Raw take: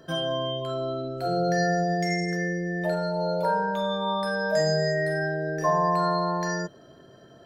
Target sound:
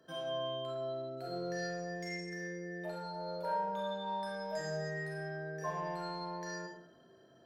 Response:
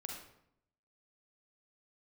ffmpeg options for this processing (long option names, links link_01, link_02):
-filter_complex "[0:a]acrossover=split=140[link_01][link_02];[link_01]acompressor=threshold=-53dB:ratio=6[link_03];[link_03][link_02]amix=inputs=2:normalize=0,aeval=exprs='0.251*(cos(1*acos(clip(val(0)/0.251,-1,1)))-cos(1*PI/2))+0.00501*(cos(5*acos(clip(val(0)/0.251,-1,1)))-cos(5*PI/2))+0.00447*(cos(6*acos(clip(val(0)/0.251,-1,1)))-cos(6*PI/2))':channel_layout=same,lowshelf=frequency=95:gain=-11[link_04];[1:a]atrim=start_sample=2205,asetrate=52920,aresample=44100[link_05];[link_04][link_05]afir=irnorm=-1:irlink=0,volume=-8dB"